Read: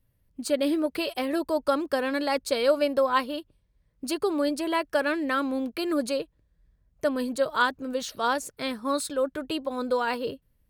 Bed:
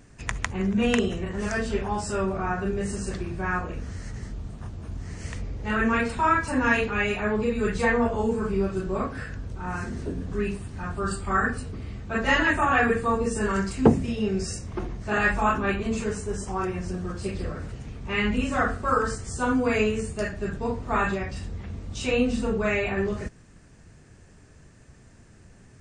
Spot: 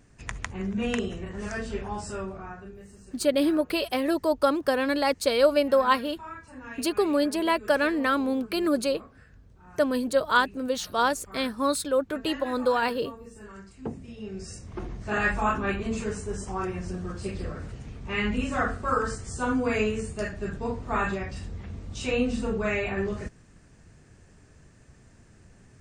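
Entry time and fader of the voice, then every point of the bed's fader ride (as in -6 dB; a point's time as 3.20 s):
2.75 s, +2.0 dB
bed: 2.08 s -5.5 dB
2.88 s -19.5 dB
13.73 s -19.5 dB
14.93 s -2.5 dB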